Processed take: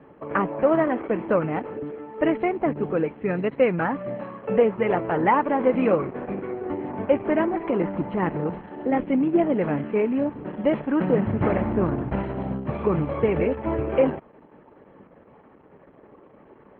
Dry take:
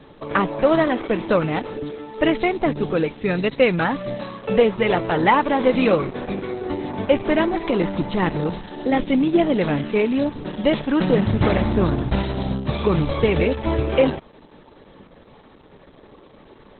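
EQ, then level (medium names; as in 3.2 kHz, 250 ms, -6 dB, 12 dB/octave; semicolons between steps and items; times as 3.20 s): boxcar filter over 12 samples; high-pass 140 Hz 6 dB/octave; -2.0 dB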